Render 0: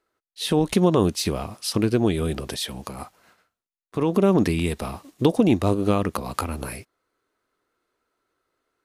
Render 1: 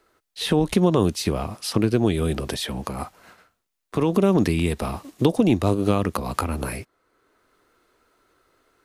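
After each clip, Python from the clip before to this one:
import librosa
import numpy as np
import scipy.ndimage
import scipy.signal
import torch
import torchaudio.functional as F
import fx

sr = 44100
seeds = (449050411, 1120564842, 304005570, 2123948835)

y = fx.low_shelf(x, sr, hz=63.0, db=6.5)
y = fx.band_squash(y, sr, depth_pct=40)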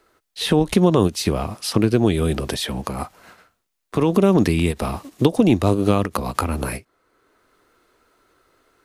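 y = fx.end_taper(x, sr, db_per_s=400.0)
y = y * 10.0 ** (3.0 / 20.0)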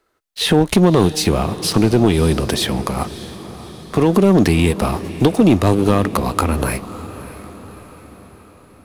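y = fx.leveller(x, sr, passes=2)
y = fx.echo_diffused(y, sr, ms=606, feedback_pct=53, wet_db=-15.0)
y = y * 10.0 ** (-2.0 / 20.0)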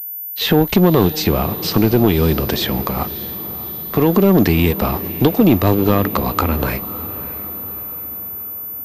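y = fx.pwm(x, sr, carrier_hz=14000.0)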